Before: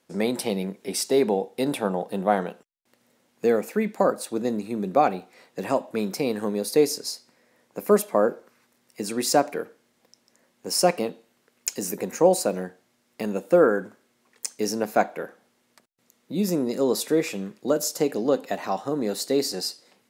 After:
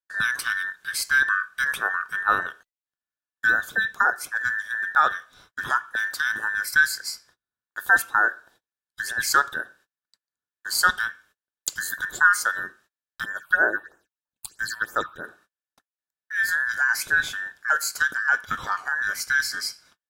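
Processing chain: band inversion scrambler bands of 2000 Hz; gate -54 dBFS, range -33 dB; 13.24–15.24 phaser stages 6, 3.1 Hz, lowest notch 420–4200 Hz

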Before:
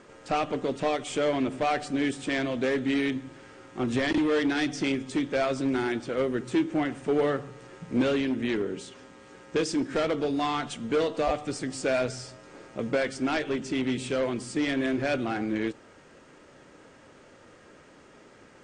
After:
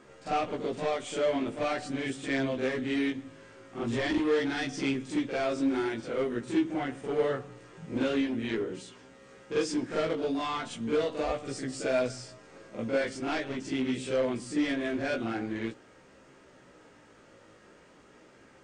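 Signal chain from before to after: chorus 0.43 Hz, delay 15 ms, depth 3.6 ms; reverse echo 44 ms -7.5 dB; gain -1 dB

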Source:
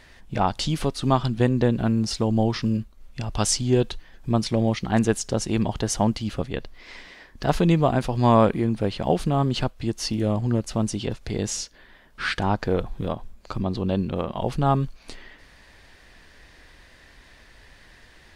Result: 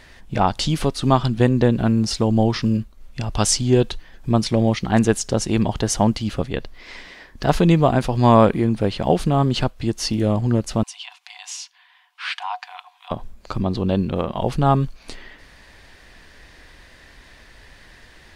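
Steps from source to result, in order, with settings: 10.83–13.11 rippled Chebyshev high-pass 710 Hz, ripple 9 dB; gain +4 dB

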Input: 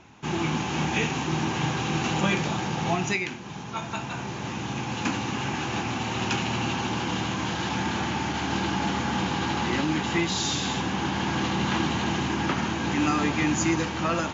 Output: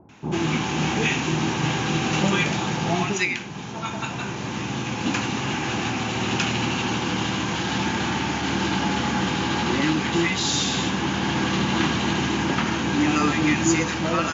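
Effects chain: low shelf 79 Hz -6.5 dB; bands offset in time lows, highs 90 ms, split 840 Hz; gain +4.5 dB

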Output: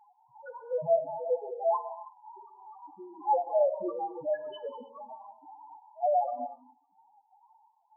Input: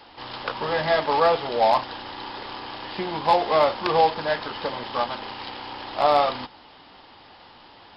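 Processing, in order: step gate "x..xx.xx" 127 bpm -12 dB; loudest bins only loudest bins 1; non-linear reverb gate 0.33 s flat, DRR 9.5 dB; gain +1.5 dB

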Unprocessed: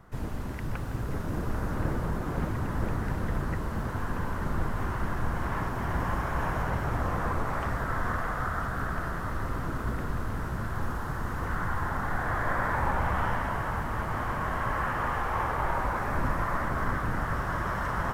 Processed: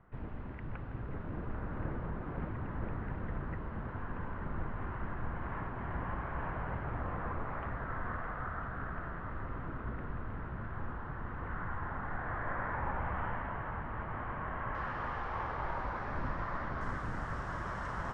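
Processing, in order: LPF 2700 Hz 24 dB/oct, from 14.75 s 4900 Hz, from 16.81 s 8100 Hz; gain -8.5 dB

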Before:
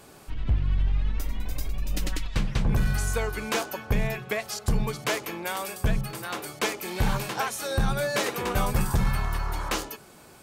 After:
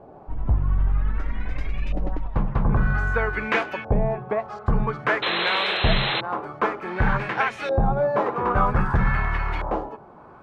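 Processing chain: LFO low-pass saw up 0.52 Hz 690–2500 Hz; painted sound noise, 5.22–6.21, 330–4200 Hz -28 dBFS; gain +3 dB

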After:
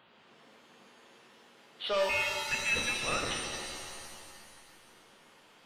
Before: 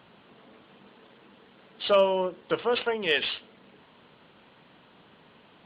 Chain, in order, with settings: low shelf 390 Hz -9 dB; soft clip -20.5 dBFS, distortion -14 dB; 2.09–3.31 inverted band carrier 3100 Hz; shimmer reverb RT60 2 s, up +7 st, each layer -2 dB, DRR 3 dB; gain -4 dB

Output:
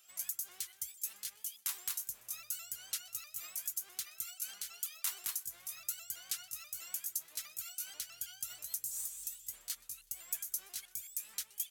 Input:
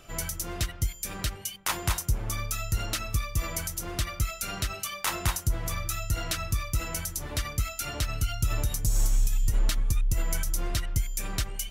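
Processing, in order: repeated pitch sweeps +2.5 st, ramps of 0.162 s; differentiator; thinning echo 0.124 s, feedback 62%, level -24 dB; gain -5 dB

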